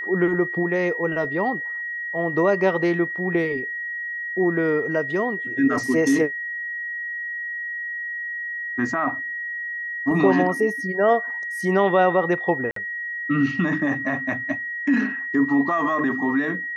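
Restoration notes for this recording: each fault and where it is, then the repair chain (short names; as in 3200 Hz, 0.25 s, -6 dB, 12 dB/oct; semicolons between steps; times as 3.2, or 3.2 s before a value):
tone 1900 Hz -27 dBFS
12.71–12.76 gap 53 ms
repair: notch 1900 Hz, Q 30; interpolate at 12.71, 53 ms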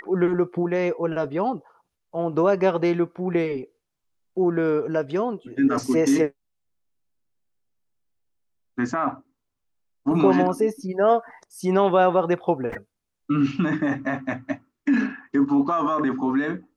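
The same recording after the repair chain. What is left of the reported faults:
none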